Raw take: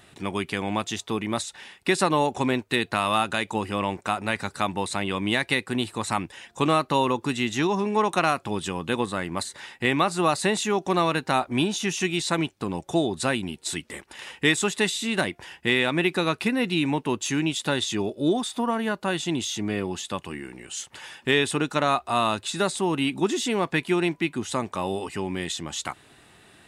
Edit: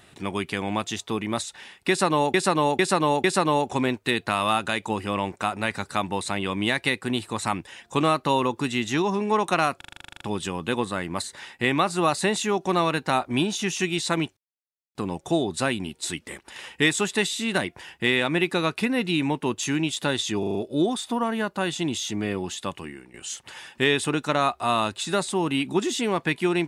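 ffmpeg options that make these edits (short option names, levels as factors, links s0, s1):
-filter_complex "[0:a]asplit=21[s0][s1][s2][s3][s4][s5][s6][s7][s8][s9][s10][s11][s12][s13][s14][s15][s16][s17][s18][s19][s20];[s0]atrim=end=2.342[s21];[s1]atrim=start=1.888:end=2.342[s22];[s2]atrim=start=1.888:end=2.342[s23];[s3]atrim=start=1.888:end=8.462[s24];[s4]atrim=start=8.418:end=8.462[s25];[s5]atrim=start=8.418:end=8.462[s26];[s6]atrim=start=8.418:end=8.462[s27];[s7]atrim=start=8.418:end=8.462[s28];[s8]atrim=start=8.418:end=8.462[s29];[s9]atrim=start=8.418:end=8.462[s30];[s10]atrim=start=8.418:end=8.462[s31];[s11]atrim=start=8.418:end=8.462[s32];[s12]atrim=start=8.418:end=8.462[s33];[s13]atrim=start=8.418:end=8.462[s34];[s14]atrim=start=8.418:end=12.58,asetpts=PTS-STARTPTS,afade=t=out:st=4.158:d=0.004:c=hsin,apad=pad_dur=0.58[s35];[s15]atrim=start=12.58:end=18.062,asetpts=PTS-STARTPTS,afade=t=in:d=0.004:c=hsin[s36];[s16]atrim=start=18.018:end=18.062[s37];[s17]atrim=start=18.018:end=18.062[s38];[s18]atrim=start=18.018:end=18.062[s39];[s19]atrim=start=18.018:end=20.61,asetpts=PTS-STARTPTS,afade=t=out:st=2.202:d=0.39:silence=0.266073[s40];[s20]atrim=start=20.61,asetpts=PTS-STARTPTS,afade=t=in:d=0.004:c=hsin:silence=0.266073[s41];[s21][s22]acrossfade=d=0.004:c1=hsin:c2=hsin[s42];[s42][s23]acrossfade=d=0.004:c1=hsin:c2=hsin[s43];[s43][s24]acrossfade=d=0.004:c1=hsin:c2=hsin[s44];[s44][s25]acrossfade=d=0.004:c1=hsin:c2=hsin[s45];[s45][s26]acrossfade=d=0.004:c1=hsin:c2=hsin[s46];[s46][s27]acrossfade=d=0.004:c1=hsin:c2=hsin[s47];[s47][s28]acrossfade=d=0.004:c1=hsin:c2=hsin[s48];[s48][s29]acrossfade=d=0.004:c1=hsin:c2=hsin[s49];[s49][s30]acrossfade=d=0.004:c1=hsin:c2=hsin[s50];[s50][s31]acrossfade=d=0.004:c1=hsin:c2=hsin[s51];[s51][s32]acrossfade=d=0.004:c1=hsin:c2=hsin[s52];[s52][s33]acrossfade=d=0.004:c1=hsin:c2=hsin[s53];[s53][s34]acrossfade=d=0.004:c1=hsin:c2=hsin[s54];[s35][s36]concat=n=2:v=0:a=1[s55];[s54][s55]acrossfade=d=0.004:c1=hsin:c2=hsin[s56];[s56][s37]acrossfade=d=0.004:c1=hsin:c2=hsin[s57];[s57][s38]acrossfade=d=0.004:c1=hsin:c2=hsin[s58];[s58][s39]acrossfade=d=0.004:c1=hsin:c2=hsin[s59];[s40][s41]concat=n=2:v=0:a=1[s60];[s59][s60]acrossfade=d=0.004:c1=hsin:c2=hsin"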